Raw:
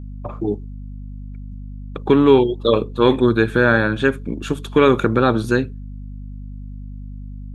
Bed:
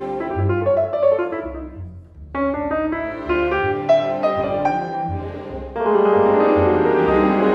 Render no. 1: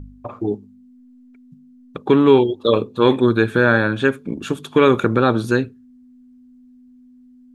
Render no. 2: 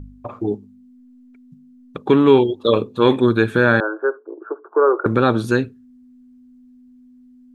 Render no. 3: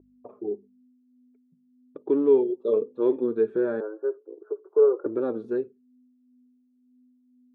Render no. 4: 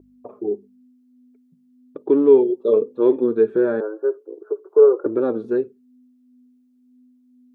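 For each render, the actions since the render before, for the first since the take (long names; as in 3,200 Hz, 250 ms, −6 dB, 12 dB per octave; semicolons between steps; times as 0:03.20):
hum removal 50 Hz, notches 4
0:03.80–0:05.06: Chebyshev band-pass filter 330–1,500 Hz, order 5
flanger 0.97 Hz, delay 3 ms, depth 2.5 ms, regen +38%; resonant band-pass 420 Hz, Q 3.3
level +6.5 dB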